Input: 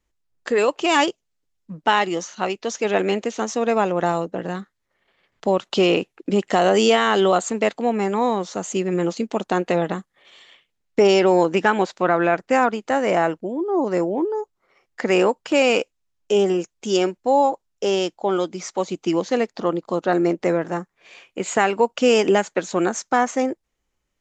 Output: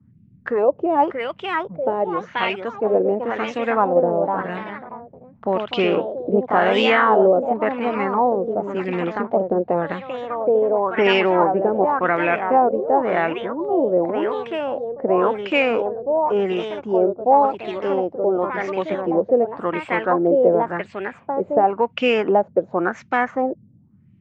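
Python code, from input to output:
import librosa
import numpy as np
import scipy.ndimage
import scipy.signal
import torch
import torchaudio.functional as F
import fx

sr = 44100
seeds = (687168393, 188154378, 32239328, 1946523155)

y = fx.echo_pitch(x, sr, ms=688, semitones=2, count=3, db_per_echo=-6.0)
y = fx.dmg_noise_band(y, sr, seeds[0], low_hz=85.0, high_hz=230.0, level_db=-50.0)
y = fx.filter_lfo_lowpass(y, sr, shape='sine', hz=0.92, low_hz=510.0, high_hz=2600.0, q=3.0)
y = y * librosa.db_to_amplitude(-3.0)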